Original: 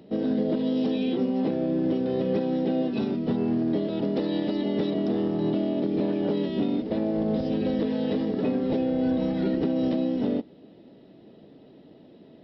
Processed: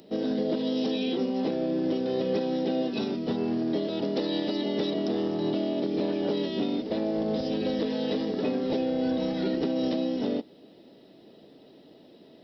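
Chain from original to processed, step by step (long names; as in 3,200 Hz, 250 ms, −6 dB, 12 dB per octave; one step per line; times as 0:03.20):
bass and treble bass −7 dB, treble +13 dB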